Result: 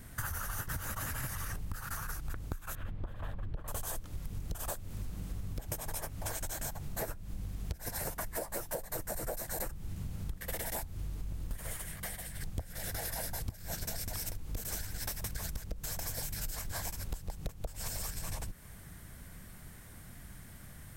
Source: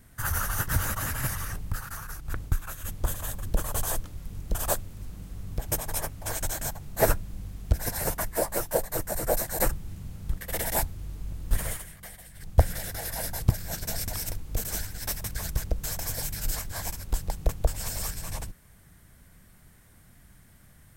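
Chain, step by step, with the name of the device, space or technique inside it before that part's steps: 2.75–3.68 air absorption 430 m; serial compression, leveller first (compressor 2.5:1, threshold -30 dBFS, peak gain reduction 12 dB; compressor 6:1, threshold -40 dBFS, peak gain reduction 16.5 dB); gain +5 dB

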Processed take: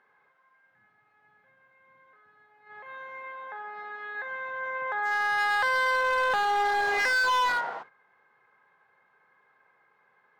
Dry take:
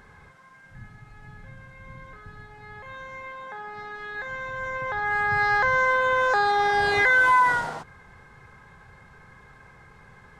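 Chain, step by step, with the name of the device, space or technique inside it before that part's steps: walkie-talkie (BPF 460–2700 Hz; hard clip -21.5 dBFS, distortion -11 dB; gate -44 dBFS, range -11 dB); gain -1 dB

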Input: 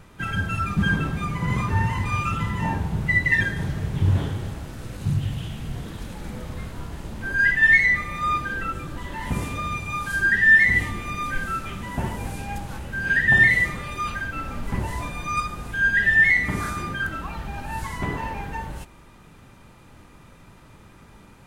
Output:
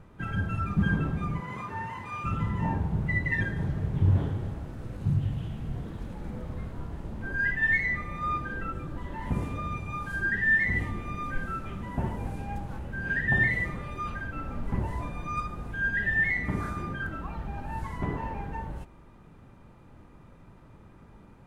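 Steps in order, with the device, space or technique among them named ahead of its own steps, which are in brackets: 1.4–2.24 HPF 710 Hz 6 dB/oct; through cloth (high shelf 2000 Hz -15 dB); gain -2.5 dB

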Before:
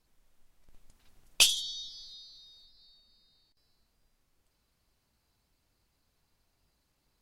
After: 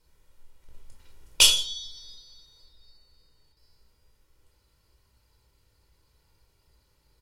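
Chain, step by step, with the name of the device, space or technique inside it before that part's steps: microphone above a desk (comb 2.1 ms, depth 51%; reverb RT60 0.45 s, pre-delay 18 ms, DRR 0.5 dB); gain +3 dB

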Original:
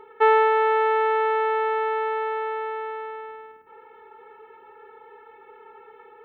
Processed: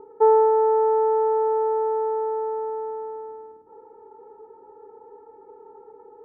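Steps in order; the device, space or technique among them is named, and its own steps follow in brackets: under water (LPF 860 Hz 24 dB/oct; bell 300 Hz +8.5 dB 0.25 oct); gain +3 dB

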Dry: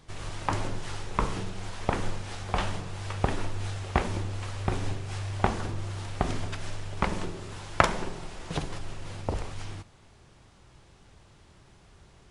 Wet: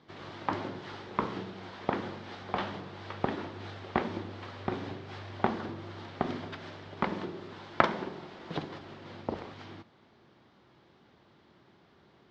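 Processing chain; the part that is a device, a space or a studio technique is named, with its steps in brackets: kitchen radio (speaker cabinet 170–4200 Hz, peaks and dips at 230 Hz +5 dB, 340 Hz +4 dB, 2600 Hz -5 dB); gain -2.5 dB

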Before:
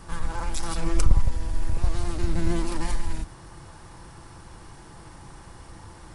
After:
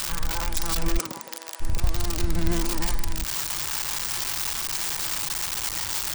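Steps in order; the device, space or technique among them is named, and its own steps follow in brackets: budget class-D amplifier (switching dead time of 0.051 ms; switching spikes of -12 dBFS); 0.97–1.6 HPF 160 Hz -> 560 Hz 24 dB/oct

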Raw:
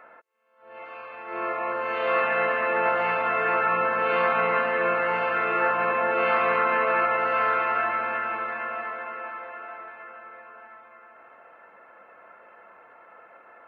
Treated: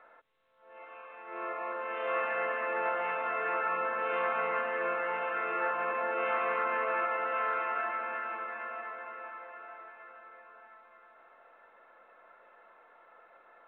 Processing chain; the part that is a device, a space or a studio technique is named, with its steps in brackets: telephone (BPF 270–3200 Hz; gain -8 dB; µ-law 64 kbps 8000 Hz)

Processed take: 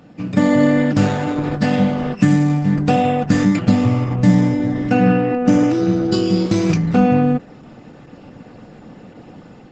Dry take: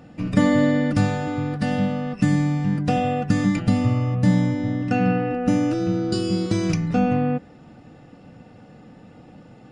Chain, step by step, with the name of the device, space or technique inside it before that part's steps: video call (HPF 120 Hz 12 dB/oct; AGC gain up to 6 dB; gain +2 dB; Opus 12 kbps 48000 Hz)

